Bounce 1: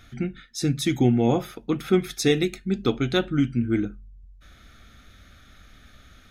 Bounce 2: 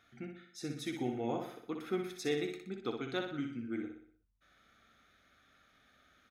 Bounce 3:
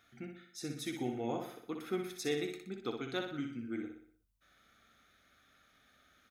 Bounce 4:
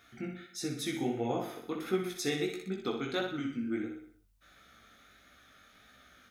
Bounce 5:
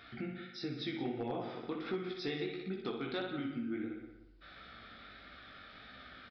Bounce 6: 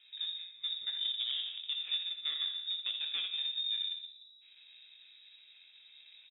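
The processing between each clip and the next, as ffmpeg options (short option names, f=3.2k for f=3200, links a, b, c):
-filter_complex "[0:a]highpass=f=730:p=1,highshelf=f=2.2k:g=-11,asplit=2[a][b];[b]aecho=0:1:61|122|183|244|305|366:0.501|0.241|0.115|0.0554|0.0266|0.0128[c];[a][c]amix=inputs=2:normalize=0,volume=-7.5dB"
-af "highshelf=f=6.6k:g=7.5,volume=-1dB"
-filter_complex "[0:a]asplit=2[a][b];[b]acompressor=threshold=-45dB:ratio=6,volume=-2dB[c];[a][c]amix=inputs=2:normalize=0,flanger=delay=15.5:depth=6.1:speed=1.5,volume=5.5dB"
-filter_complex "[0:a]acompressor=threshold=-51dB:ratio=2,asplit=2[a][b];[b]adelay=175,lowpass=f=2.4k:p=1,volume=-10.5dB,asplit=2[c][d];[d]adelay=175,lowpass=f=2.4k:p=1,volume=0.3,asplit=2[e][f];[f]adelay=175,lowpass=f=2.4k:p=1,volume=0.3[g];[a][c][e][g]amix=inputs=4:normalize=0,aresample=11025,volume=36dB,asoftclip=hard,volume=-36dB,aresample=44100,volume=6.5dB"
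-af "adynamicsmooth=sensitivity=4:basefreq=590,lowpass=f=3.3k:t=q:w=0.5098,lowpass=f=3.3k:t=q:w=0.6013,lowpass=f=3.3k:t=q:w=0.9,lowpass=f=3.3k:t=q:w=2.563,afreqshift=-3900,aecho=1:1:85:0.2,volume=2.5dB"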